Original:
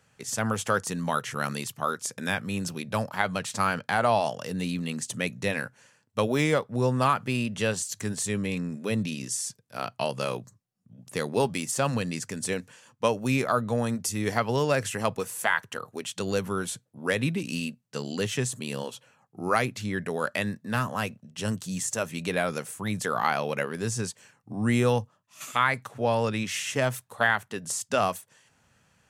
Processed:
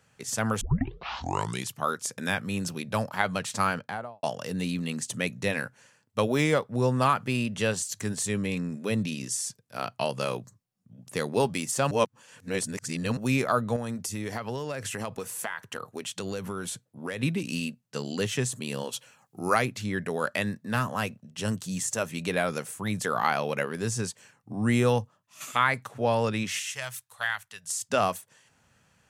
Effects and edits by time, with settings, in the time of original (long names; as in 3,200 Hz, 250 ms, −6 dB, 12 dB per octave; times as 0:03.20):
0:00.61: tape start 1.11 s
0:03.62–0:04.23: fade out and dull
0:11.91–0:13.17: reverse
0:13.76–0:17.23: downward compressor, threshold −29 dBFS
0:18.92–0:19.53: high-shelf EQ 2,200 Hz → 3,200 Hz +11 dB
0:26.59–0:27.82: guitar amp tone stack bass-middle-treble 10-0-10